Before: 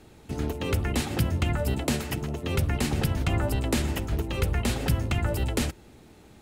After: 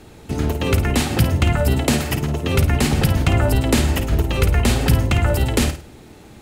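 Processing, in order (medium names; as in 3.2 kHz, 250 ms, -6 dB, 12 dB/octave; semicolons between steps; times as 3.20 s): flutter echo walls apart 9.1 m, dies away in 0.34 s; trim +8.5 dB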